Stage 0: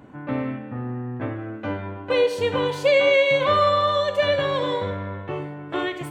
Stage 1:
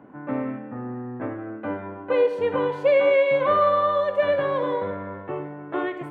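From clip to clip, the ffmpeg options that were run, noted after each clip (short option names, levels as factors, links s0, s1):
-filter_complex "[0:a]acrossover=split=160 2100:gain=0.224 1 0.1[s0][s1][s2];[s0][s1][s2]amix=inputs=3:normalize=0"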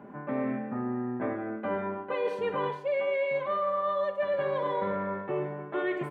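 -af "aecho=1:1:5:0.6,areverse,acompressor=threshold=0.0501:ratio=12,areverse"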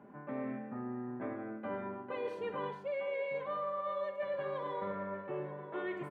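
-filter_complex "[0:a]asplit=2[s0][s1];[s1]adelay=932.9,volume=0.282,highshelf=f=4000:g=-21[s2];[s0][s2]amix=inputs=2:normalize=0,volume=0.376"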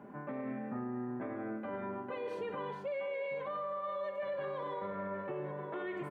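-af "alimiter=level_in=3.98:limit=0.0631:level=0:latency=1:release=89,volume=0.251,volume=1.68"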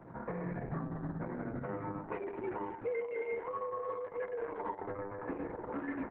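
-af "highpass=f=200:t=q:w=0.5412,highpass=f=200:t=q:w=1.307,lowpass=f=2400:t=q:w=0.5176,lowpass=f=2400:t=q:w=0.7071,lowpass=f=2400:t=q:w=1.932,afreqshift=-85,volume=1.33" -ar 48000 -c:a libopus -b:a 6k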